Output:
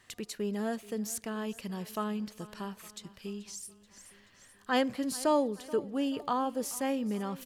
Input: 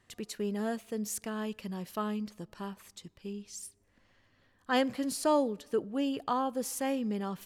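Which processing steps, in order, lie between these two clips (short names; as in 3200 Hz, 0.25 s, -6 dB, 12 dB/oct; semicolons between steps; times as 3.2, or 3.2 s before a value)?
feedback echo 0.431 s, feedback 51%, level -20 dB; 6.1–7.04 crackle 170/s -57 dBFS; mismatched tape noise reduction encoder only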